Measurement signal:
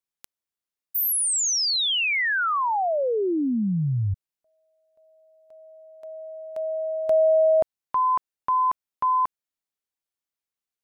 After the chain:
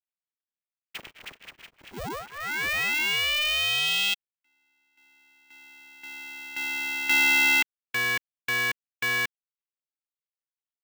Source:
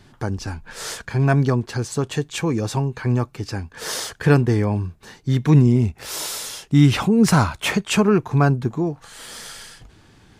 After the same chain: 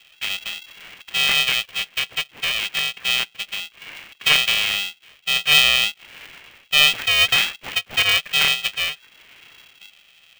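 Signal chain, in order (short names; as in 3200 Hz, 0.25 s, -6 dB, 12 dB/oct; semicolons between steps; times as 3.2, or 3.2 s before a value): median filter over 25 samples; inverted band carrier 3000 Hz; polarity switched at an audio rate 300 Hz; gain -2 dB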